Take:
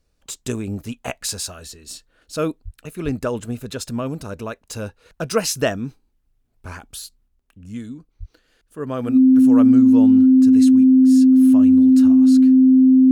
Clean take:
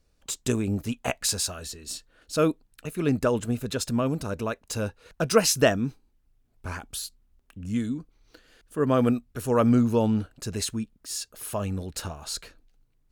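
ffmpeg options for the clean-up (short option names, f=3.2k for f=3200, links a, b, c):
-filter_complex "[0:a]bandreject=f=260:w=30,asplit=3[a][b][c];[a]afade=t=out:st=2.64:d=0.02[d];[b]highpass=f=140:w=0.5412,highpass=f=140:w=1.3066,afade=t=in:st=2.64:d=0.02,afade=t=out:st=2.76:d=0.02[e];[c]afade=t=in:st=2.76:d=0.02[f];[d][e][f]amix=inputs=3:normalize=0,asplit=3[g][h][i];[g]afade=t=out:st=3.04:d=0.02[j];[h]highpass=f=140:w=0.5412,highpass=f=140:w=1.3066,afade=t=in:st=3.04:d=0.02,afade=t=out:st=3.16:d=0.02[k];[i]afade=t=in:st=3.16:d=0.02[l];[j][k][l]amix=inputs=3:normalize=0,asplit=3[m][n][o];[m]afade=t=out:st=8.19:d=0.02[p];[n]highpass=f=140:w=0.5412,highpass=f=140:w=1.3066,afade=t=in:st=8.19:d=0.02,afade=t=out:st=8.31:d=0.02[q];[o]afade=t=in:st=8.31:d=0.02[r];[p][q][r]amix=inputs=3:normalize=0,asetnsamples=n=441:p=0,asendcmd='7.28 volume volume 4dB',volume=0dB"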